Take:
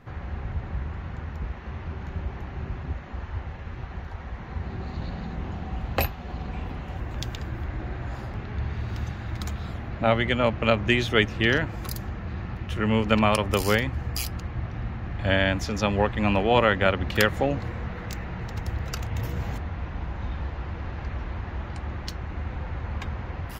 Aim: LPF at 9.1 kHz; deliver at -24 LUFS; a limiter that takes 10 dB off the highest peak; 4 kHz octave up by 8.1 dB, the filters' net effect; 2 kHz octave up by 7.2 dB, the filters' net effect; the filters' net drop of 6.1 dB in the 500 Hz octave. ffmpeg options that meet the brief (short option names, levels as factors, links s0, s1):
-af "lowpass=9100,equalizer=f=500:t=o:g=-8,equalizer=f=2000:t=o:g=7,equalizer=f=4000:t=o:g=8.5,volume=1.58,alimiter=limit=0.531:level=0:latency=1"